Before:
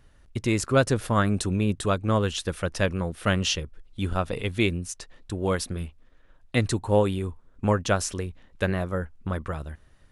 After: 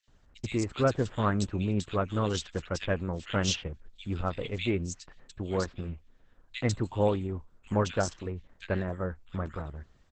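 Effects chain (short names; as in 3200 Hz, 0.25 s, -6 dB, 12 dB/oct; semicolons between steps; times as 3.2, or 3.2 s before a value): bands offset in time highs, lows 80 ms, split 2200 Hz; gain -4 dB; Opus 10 kbps 48000 Hz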